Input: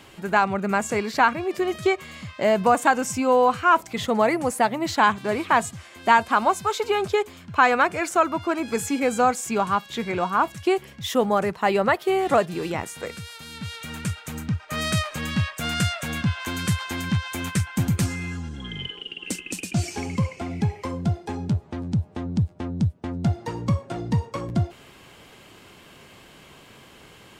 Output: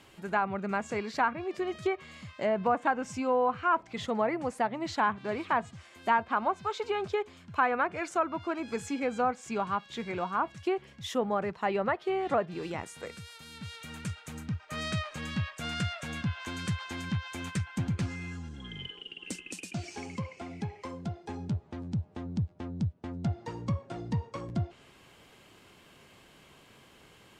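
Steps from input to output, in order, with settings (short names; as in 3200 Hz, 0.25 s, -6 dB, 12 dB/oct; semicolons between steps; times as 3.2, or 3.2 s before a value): treble ducked by the level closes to 2000 Hz, closed at -15 dBFS; 19.5–21.24 low shelf 160 Hz -8.5 dB; gain -8.5 dB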